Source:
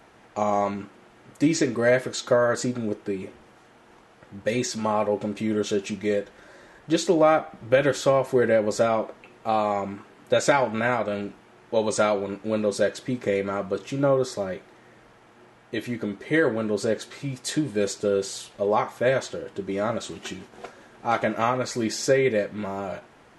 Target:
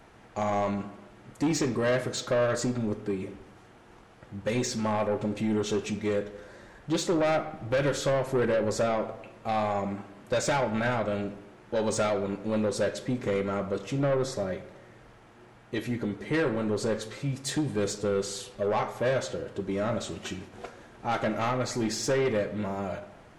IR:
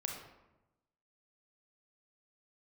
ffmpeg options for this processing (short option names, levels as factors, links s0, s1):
-filter_complex "[0:a]lowshelf=f=120:g=10.5,asoftclip=type=tanh:threshold=0.112,asplit=2[s0][s1];[1:a]atrim=start_sample=2205[s2];[s1][s2]afir=irnorm=-1:irlink=0,volume=0.501[s3];[s0][s3]amix=inputs=2:normalize=0,volume=0.562"